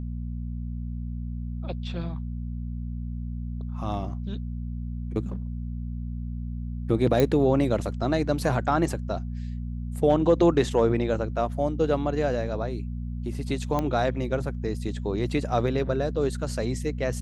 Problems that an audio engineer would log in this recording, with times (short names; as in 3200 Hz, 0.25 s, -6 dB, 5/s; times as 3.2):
hum 60 Hz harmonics 4 -32 dBFS
7.2 pop -10 dBFS
13.79 pop -14 dBFS